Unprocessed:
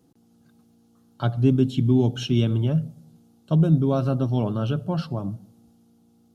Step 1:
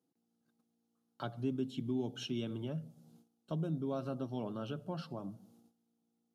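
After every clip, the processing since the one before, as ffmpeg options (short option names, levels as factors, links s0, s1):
-af "agate=range=0.178:threshold=0.002:ratio=16:detection=peak,highpass=200,acompressor=threshold=0.00631:ratio=1.5,volume=0.562"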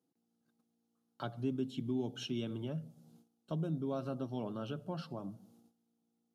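-af anull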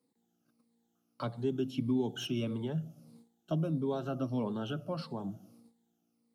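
-filter_complex "[0:a]afftfilt=real='re*pow(10,10/40*sin(2*PI*(0.95*log(max(b,1)*sr/1024/100)/log(2)-(-1.6)*(pts-256)/sr)))':imag='im*pow(10,10/40*sin(2*PI*(0.95*log(max(b,1)*sr/1024/100)/log(2)-(-1.6)*(pts-256)/sr)))':win_size=1024:overlap=0.75,acrossover=split=180|450|1600[s0][s1][s2][s3];[s3]asoftclip=type=tanh:threshold=0.0112[s4];[s0][s1][s2][s4]amix=inputs=4:normalize=0,volume=1.5"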